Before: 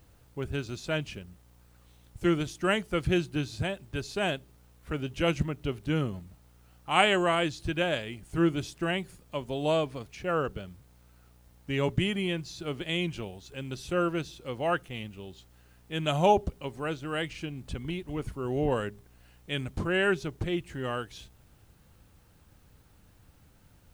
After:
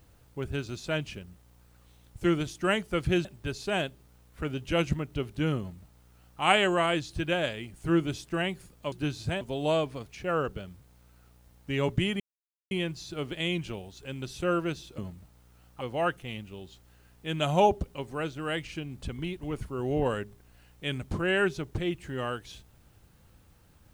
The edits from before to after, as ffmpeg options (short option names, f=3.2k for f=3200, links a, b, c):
-filter_complex "[0:a]asplit=7[a][b][c][d][e][f][g];[a]atrim=end=3.252[h];[b]atrim=start=3.738:end=9.412[i];[c]atrim=start=3.248:end=3.742[j];[d]atrim=start=9.408:end=12.2,asetpts=PTS-STARTPTS,afade=t=out:st=2.788:d=0.004:c=hsin,apad=pad_dur=0.51[k];[e]atrim=start=12.2:end=14.472,asetpts=PTS-STARTPTS,afade=t=in:d=0.004:c=hsin[l];[f]atrim=start=6.068:end=6.902[m];[g]atrim=start=14.468[n];[h][i]acrossfade=d=0.004:c1=hsin:c2=hsin[o];[o][j]acrossfade=d=0.004:c1=hsin:c2=hsin[p];[k][l]concat=n=2:v=0:a=1[q];[p][q]acrossfade=d=0.004:c1=hsin:c2=hsin[r];[r][m]acrossfade=d=0.004:c1=hsin:c2=hsin[s];[s][n]acrossfade=d=0.004:c1=hsin:c2=hsin"